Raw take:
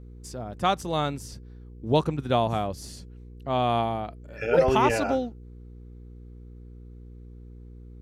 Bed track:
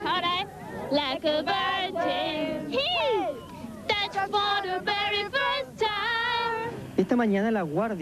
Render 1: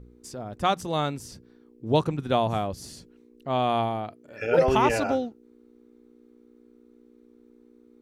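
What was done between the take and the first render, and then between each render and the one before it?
de-hum 60 Hz, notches 3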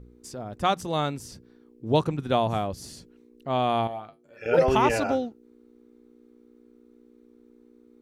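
3.87–4.46 resonator 52 Hz, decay 0.19 s, harmonics odd, mix 90%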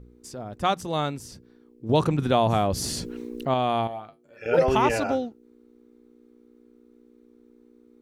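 1.89–3.54 fast leveller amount 50%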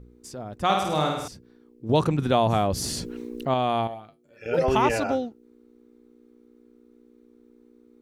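0.64–1.28 flutter echo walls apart 8.9 m, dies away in 0.93 s; 3.94–4.64 bell 1000 Hz -6 dB 2.3 oct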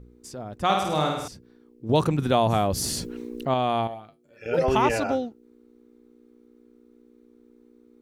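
1.93–3.07 high shelf 11000 Hz +8.5 dB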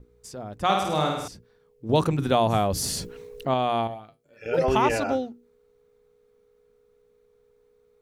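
notches 60/120/180/240/300/360 Hz; gate with hold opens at -57 dBFS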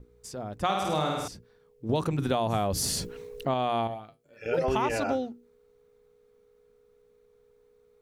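compressor 6:1, threshold -23 dBFS, peak gain reduction 7.5 dB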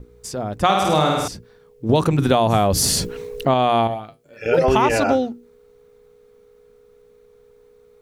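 gain +10.5 dB

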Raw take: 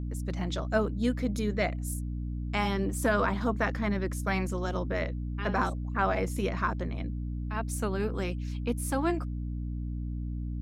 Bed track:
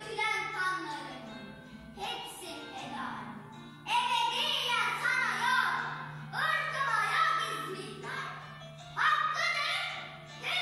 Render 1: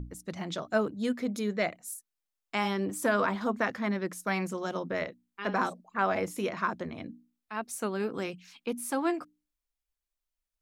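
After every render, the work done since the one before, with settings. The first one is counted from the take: notches 60/120/180/240/300 Hz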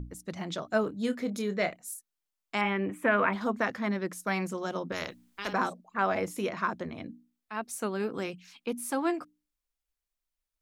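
0.81–1.74 doubler 26 ms -10 dB; 2.61–3.33 resonant high shelf 3500 Hz -13.5 dB, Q 3; 4.92–5.53 spectral compressor 2:1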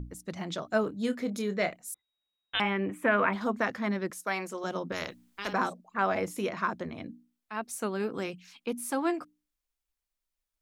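1.94–2.6 inverted band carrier 3800 Hz; 4.1–4.64 HPF 330 Hz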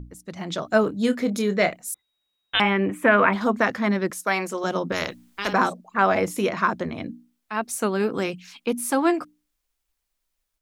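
AGC gain up to 8.5 dB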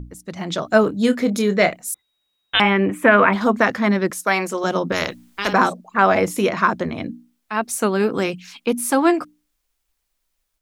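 gain +4.5 dB; limiter -2 dBFS, peak gain reduction 2 dB

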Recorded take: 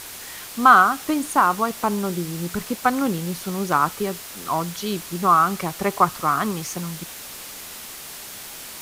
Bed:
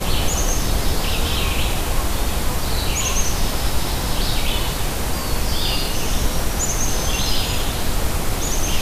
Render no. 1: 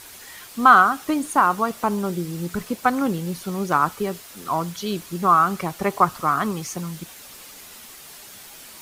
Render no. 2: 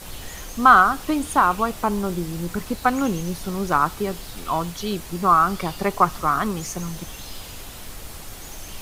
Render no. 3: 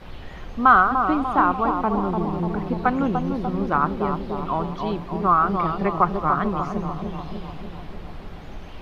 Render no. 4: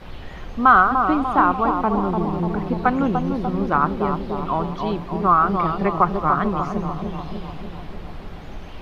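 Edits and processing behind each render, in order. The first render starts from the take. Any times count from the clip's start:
denoiser 7 dB, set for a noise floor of -38 dBFS
add bed -18 dB
air absorption 350 m; on a send: analogue delay 0.295 s, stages 2048, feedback 65%, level -4.5 dB
gain +2 dB; limiter -3 dBFS, peak gain reduction 1.5 dB

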